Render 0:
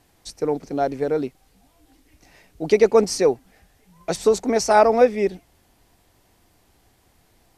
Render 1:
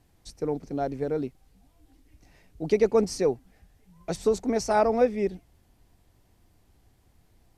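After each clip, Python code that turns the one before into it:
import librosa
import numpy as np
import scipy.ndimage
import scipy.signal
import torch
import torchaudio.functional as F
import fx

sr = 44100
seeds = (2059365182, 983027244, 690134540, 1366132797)

y = fx.low_shelf(x, sr, hz=240.0, db=11.0)
y = F.gain(torch.from_numpy(y), -9.0).numpy()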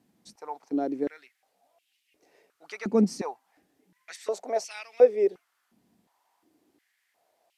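y = fx.filter_held_highpass(x, sr, hz=2.8, low_hz=210.0, high_hz=2700.0)
y = F.gain(torch.from_numpy(y), -5.0).numpy()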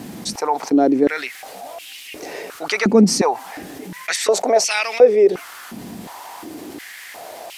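y = fx.env_flatten(x, sr, amount_pct=50)
y = F.gain(torch.from_numpy(y), 6.0).numpy()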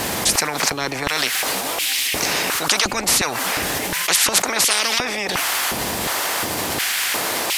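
y = fx.spectral_comp(x, sr, ratio=10.0)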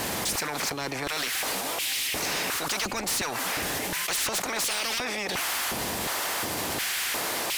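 y = np.clip(10.0 ** (19.0 / 20.0) * x, -1.0, 1.0) / 10.0 ** (19.0 / 20.0)
y = F.gain(torch.from_numpy(y), -6.0).numpy()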